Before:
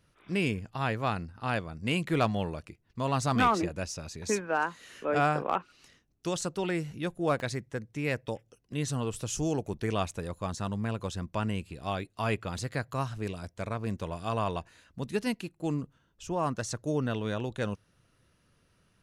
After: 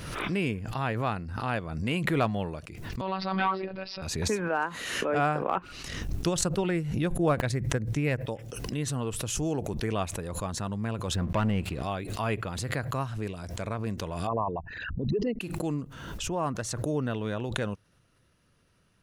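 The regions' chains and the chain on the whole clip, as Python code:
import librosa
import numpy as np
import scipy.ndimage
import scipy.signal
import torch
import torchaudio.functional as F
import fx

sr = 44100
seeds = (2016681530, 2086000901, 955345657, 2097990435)

y = fx.chain(x, sr, fx.robotise(hz=190.0),
    fx.steep_lowpass(hz=5000.0, slope=96),
    fx.low_shelf(hz=180.0, db=-9.0), at=(3.01, 4.02))
y = fx.chain(y, sr, fx.low_shelf(hz=120.0, db=11.5),
    fx.transient(attack_db=4, sustain_db=-7), at=(5.57, 8.21))
y = fx.chain(y, sr, fx.lowpass(hz=3500.0, slope=6),
    fx.leveller(passes=2), at=(11.14, 11.83))
y = fx.chain(y, sr, fx.envelope_sharpen(power=3.0),
    fx.lowpass(hz=5300.0, slope=24),
    fx.pre_swell(db_per_s=45.0), at=(14.27, 15.41))
y = fx.dynamic_eq(y, sr, hz=5800.0, q=0.96, threshold_db=-53.0, ratio=4.0, max_db=-7)
y = fx.pre_swell(y, sr, db_per_s=38.0)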